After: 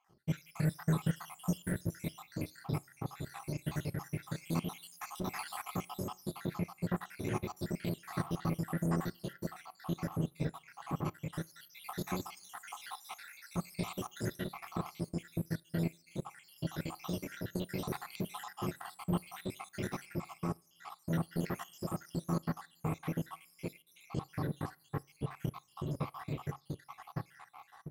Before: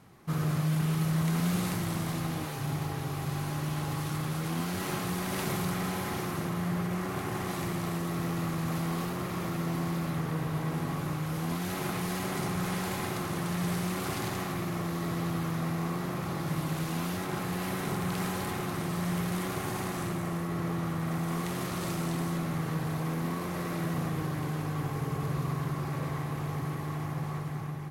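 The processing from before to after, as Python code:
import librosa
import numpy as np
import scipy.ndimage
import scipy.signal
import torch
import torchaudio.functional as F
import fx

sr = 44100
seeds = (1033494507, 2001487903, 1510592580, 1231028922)

y = fx.spec_dropout(x, sr, seeds[0], share_pct=76)
y = fx.rev_double_slope(y, sr, seeds[1], early_s=0.36, late_s=1.7, knee_db=-19, drr_db=14.0)
y = fx.power_curve(y, sr, exponent=1.4)
y = y * 10.0 ** (3.0 / 20.0)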